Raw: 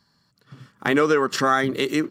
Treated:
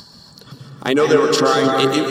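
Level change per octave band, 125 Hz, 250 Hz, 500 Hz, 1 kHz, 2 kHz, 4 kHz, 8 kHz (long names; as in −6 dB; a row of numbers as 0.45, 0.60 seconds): +5.5, +4.5, +7.5, +4.0, +1.0, +9.0, +7.5 decibels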